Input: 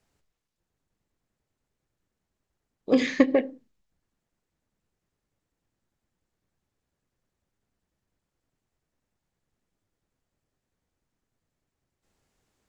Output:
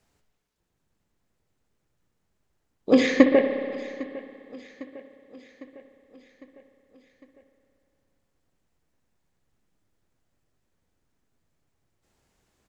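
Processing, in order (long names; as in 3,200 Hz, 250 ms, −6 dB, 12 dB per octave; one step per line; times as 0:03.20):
repeating echo 804 ms, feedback 57%, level −19.5 dB
on a send at −7 dB: convolution reverb RT60 2.5 s, pre-delay 59 ms
on the sum: level +3.5 dB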